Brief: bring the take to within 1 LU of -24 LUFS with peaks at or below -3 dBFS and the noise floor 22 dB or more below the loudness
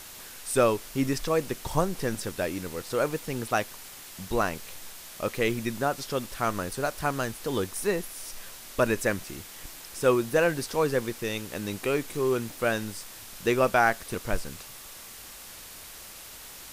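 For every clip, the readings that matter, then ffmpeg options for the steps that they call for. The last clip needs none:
noise floor -45 dBFS; noise floor target -51 dBFS; loudness -28.5 LUFS; peak level -8.5 dBFS; loudness target -24.0 LUFS
-> -af "afftdn=nr=6:nf=-45"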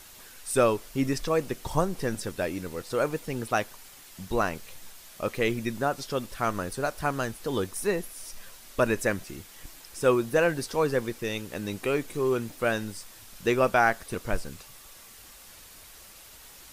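noise floor -50 dBFS; noise floor target -51 dBFS
-> -af "afftdn=nr=6:nf=-50"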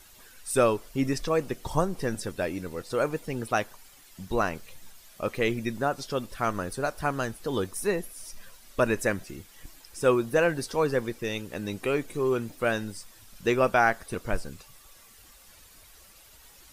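noise floor -54 dBFS; loudness -28.5 LUFS; peak level -8.5 dBFS; loudness target -24.0 LUFS
-> -af "volume=1.68"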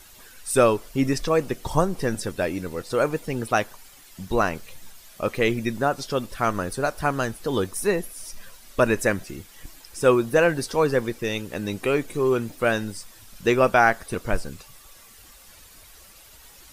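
loudness -24.0 LUFS; peak level -4.0 dBFS; noise floor -49 dBFS

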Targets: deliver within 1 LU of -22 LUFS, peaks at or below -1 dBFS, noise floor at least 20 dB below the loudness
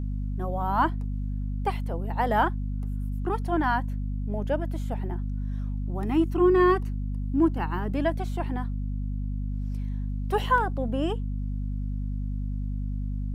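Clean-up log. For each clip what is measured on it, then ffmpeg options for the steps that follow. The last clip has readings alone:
hum 50 Hz; highest harmonic 250 Hz; hum level -27 dBFS; loudness -28.0 LUFS; peak level -10.0 dBFS; loudness target -22.0 LUFS
-> -af "bandreject=f=50:t=h:w=6,bandreject=f=100:t=h:w=6,bandreject=f=150:t=h:w=6,bandreject=f=200:t=h:w=6,bandreject=f=250:t=h:w=6"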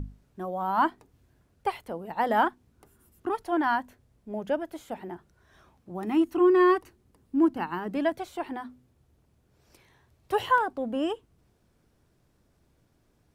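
hum not found; loudness -28.0 LUFS; peak level -11.5 dBFS; loudness target -22.0 LUFS
-> -af "volume=2"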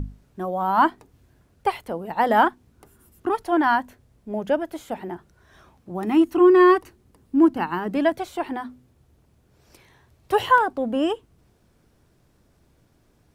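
loudness -22.0 LUFS; peak level -5.5 dBFS; noise floor -62 dBFS

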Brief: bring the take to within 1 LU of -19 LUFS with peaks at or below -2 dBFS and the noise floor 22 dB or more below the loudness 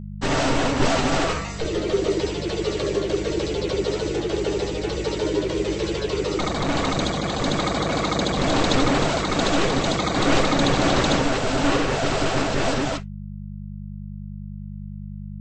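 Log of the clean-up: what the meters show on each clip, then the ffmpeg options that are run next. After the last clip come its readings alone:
hum 50 Hz; highest harmonic 200 Hz; hum level -31 dBFS; loudness -22.5 LUFS; peak level -6.5 dBFS; loudness target -19.0 LUFS
-> -af "bandreject=f=50:t=h:w=4,bandreject=f=100:t=h:w=4,bandreject=f=150:t=h:w=4,bandreject=f=200:t=h:w=4"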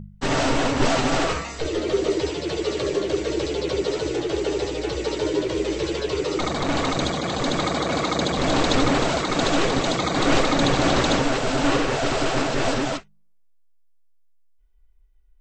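hum not found; loudness -23.0 LUFS; peak level -6.5 dBFS; loudness target -19.0 LUFS
-> -af "volume=1.58"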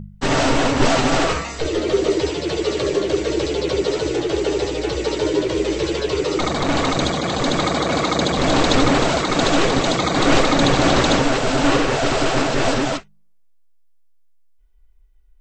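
loudness -19.0 LUFS; peak level -2.5 dBFS; noise floor -51 dBFS

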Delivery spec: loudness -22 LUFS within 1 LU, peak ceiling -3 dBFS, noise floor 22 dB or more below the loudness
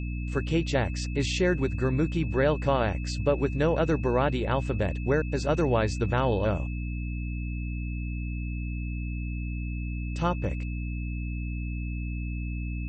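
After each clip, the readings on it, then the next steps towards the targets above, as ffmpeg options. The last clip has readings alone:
hum 60 Hz; highest harmonic 300 Hz; hum level -29 dBFS; steady tone 2.6 kHz; tone level -44 dBFS; loudness -29.0 LUFS; peak level -11.5 dBFS; loudness target -22.0 LUFS
-> -af "bandreject=f=60:t=h:w=4,bandreject=f=120:t=h:w=4,bandreject=f=180:t=h:w=4,bandreject=f=240:t=h:w=4,bandreject=f=300:t=h:w=4"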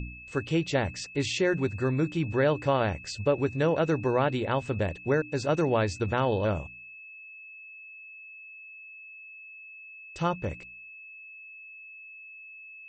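hum not found; steady tone 2.6 kHz; tone level -44 dBFS
-> -af "bandreject=f=2600:w=30"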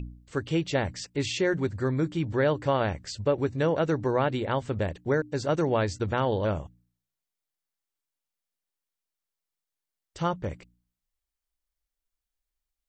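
steady tone not found; loudness -28.0 LUFS; peak level -12.5 dBFS; loudness target -22.0 LUFS
-> -af "volume=2"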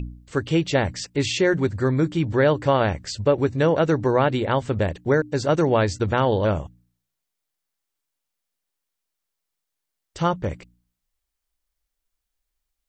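loudness -22.0 LUFS; peak level -6.5 dBFS; noise floor -82 dBFS

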